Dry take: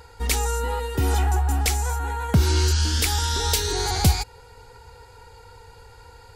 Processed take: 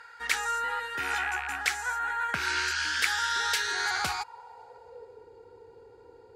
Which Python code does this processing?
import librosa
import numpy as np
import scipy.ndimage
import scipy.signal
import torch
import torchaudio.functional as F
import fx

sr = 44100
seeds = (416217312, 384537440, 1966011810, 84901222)

y = fx.rattle_buzz(x, sr, strikes_db=-18.0, level_db=-24.0)
y = fx.high_shelf(y, sr, hz=3300.0, db=10.5)
y = fx.filter_sweep_bandpass(y, sr, from_hz=1600.0, to_hz=370.0, start_s=3.89, end_s=5.25, q=3.7)
y = y * librosa.db_to_amplitude(7.0)